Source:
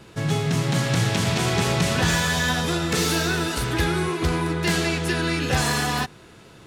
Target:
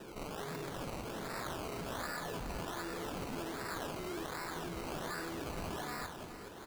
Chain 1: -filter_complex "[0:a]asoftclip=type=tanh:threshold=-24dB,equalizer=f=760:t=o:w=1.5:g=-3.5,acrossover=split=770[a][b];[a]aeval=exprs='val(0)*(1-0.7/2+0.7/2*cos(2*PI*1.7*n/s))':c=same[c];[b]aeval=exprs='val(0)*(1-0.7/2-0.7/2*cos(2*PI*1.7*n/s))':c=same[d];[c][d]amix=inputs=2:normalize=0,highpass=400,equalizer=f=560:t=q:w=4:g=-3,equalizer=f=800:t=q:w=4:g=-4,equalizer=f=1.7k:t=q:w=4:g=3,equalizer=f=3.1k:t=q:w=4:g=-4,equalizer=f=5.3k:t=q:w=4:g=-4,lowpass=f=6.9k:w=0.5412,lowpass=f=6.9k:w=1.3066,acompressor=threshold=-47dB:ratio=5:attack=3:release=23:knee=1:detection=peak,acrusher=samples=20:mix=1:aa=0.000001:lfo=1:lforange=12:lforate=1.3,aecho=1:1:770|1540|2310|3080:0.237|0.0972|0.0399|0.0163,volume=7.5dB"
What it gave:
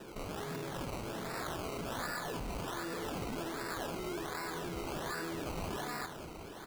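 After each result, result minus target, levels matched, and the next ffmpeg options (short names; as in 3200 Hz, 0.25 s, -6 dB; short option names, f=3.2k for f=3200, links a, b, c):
echo 0.349 s late; soft clip: distortion -5 dB
-filter_complex "[0:a]asoftclip=type=tanh:threshold=-24dB,equalizer=f=760:t=o:w=1.5:g=-3.5,acrossover=split=770[a][b];[a]aeval=exprs='val(0)*(1-0.7/2+0.7/2*cos(2*PI*1.7*n/s))':c=same[c];[b]aeval=exprs='val(0)*(1-0.7/2-0.7/2*cos(2*PI*1.7*n/s))':c=same[d];[c][d]amix=inputs=2:normalize=0,highpass=400,equalizer=f=560:t=q:w=4:g=-3,equalizer=f=800:t=q:w=4:g=-4,equalizer=f=1.7k:t=q:w=4:g=3,equalizer=f=3.1k:t=q:w=4:g=-4,equalizer=f=5.3k:t=q:w=4:g=-4,lowpass=f=6.9k:w=0.5412,lowpass=f=6.9k:w=1.3066,acompressor=threshold=-47dB:ratio=5:attack=3:release=23:knee=1:detection=peak,acrusher=samples=20:mix=1:aa=0.000001:lfo=1:lforange=12:lforate=1.3,aecho=1:1:421|842|1263|1684:0.237|0.0972|0.0399|0.0163,volume=7.5dB"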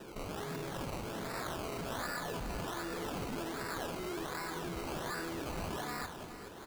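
soft clip: distortion -5 dB
-filter_complex "[0:a]asoftclip=type=tanh:threshold=-34.5dB,equalizer=f=760:t=o:w=1.5:g=-3.5,acrossover=split=770[a][b];[a]aeval=exprs='val(0)*(1-0.7/2+0.7/2*cos(2*PI*1.7*n/s))':c=same[c];[b]aeval=exprs='val(0)*(1-0.7/2-0.7/2*cos(2*PI*1.7*n/s))':c=same[d];[c][d]amix=inputs=2:normalize=0,highpass=400,equalizer=f=560:t=q:w=4:g=-3,equalizer=f=800:t=q:w=4:g=-4,equalizer=f=1.7k:t=q:w=4:g=3,equalizer=f=3.1k:t=q:w=4:g=-4,equalizer=f=5.3k:t=q:w=4:g=-4,lowpass=f=6.9k:w=0.5412,lowpass=f=6.9k:w=1.3066,acompressor=threshold=-47dB:ratio=5:attack=3:release=23:knee=1:detection=peak,acrusher=samples=20:mix=1:aa=0.000001:lfo=1:lforange=12:lforate=1.3,aecho=1:1:421|842|1263|1684:0.237|0.0972|0.0399|0.0163,volume=7.5dB"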